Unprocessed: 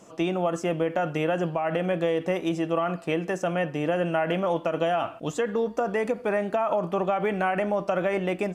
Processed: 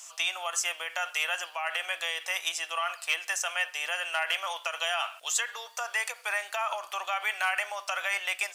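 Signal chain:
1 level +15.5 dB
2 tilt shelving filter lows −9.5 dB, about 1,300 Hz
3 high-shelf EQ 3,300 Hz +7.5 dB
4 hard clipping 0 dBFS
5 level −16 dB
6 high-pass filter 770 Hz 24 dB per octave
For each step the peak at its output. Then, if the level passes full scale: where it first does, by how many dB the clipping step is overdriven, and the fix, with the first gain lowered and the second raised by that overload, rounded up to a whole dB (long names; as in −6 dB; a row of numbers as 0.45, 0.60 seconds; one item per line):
+2.0, +2.5, +4.5, 0.0, −16.0, −14.0 dBFS
step 1, 4.5 dB
step 1 +10.5 dB, step 5 −11 dB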